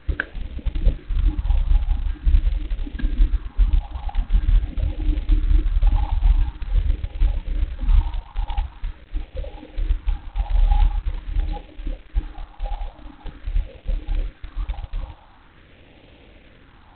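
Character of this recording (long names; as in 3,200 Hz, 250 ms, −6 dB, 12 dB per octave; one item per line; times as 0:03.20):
a quantiser's noise floor 8 bits, dither none
phaser sweep stages 4, 0.45 Hz, lowest notch 390–1,200 Hz
G.726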